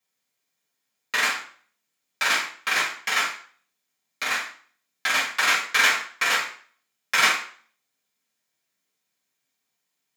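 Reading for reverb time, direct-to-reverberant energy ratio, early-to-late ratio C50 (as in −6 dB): 0.50 s, −7.0 dB, 7.0 dB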